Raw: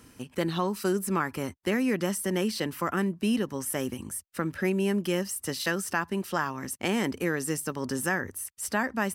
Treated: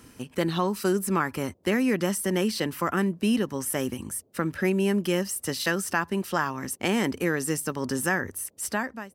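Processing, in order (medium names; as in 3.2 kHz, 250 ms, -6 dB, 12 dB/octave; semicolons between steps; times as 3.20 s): fade out at the end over 0.52 s; band noise 72–550 Hz -69 dBFS; trim +2.5 dB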